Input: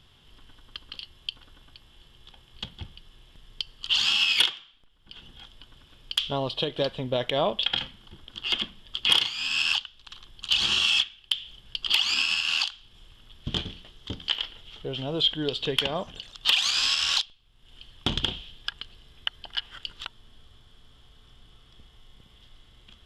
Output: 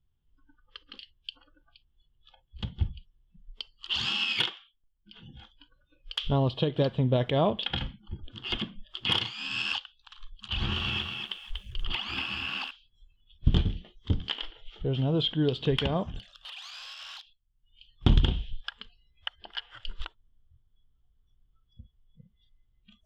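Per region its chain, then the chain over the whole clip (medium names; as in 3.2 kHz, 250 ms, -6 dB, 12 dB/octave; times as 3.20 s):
10.48–12.71 s: tone controls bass +2 dB, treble -15 dB + band-stop 4.2 kHz, Q 28 + bit-crushed delay 239 ms, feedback 35%, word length 8-bit, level -4 dB
16.06–17.92 s: peaking EQ 470 Hz -5 dB 0.78 oct + compression 8:1, threshold -32 dBFS + hard clipper -31 dBFS
whole clip: RIAA curve playback; spectral noise reduction 28 dB; peaking EQ 570 Hz -2 dB 0.27 oct; trim -1.5 dB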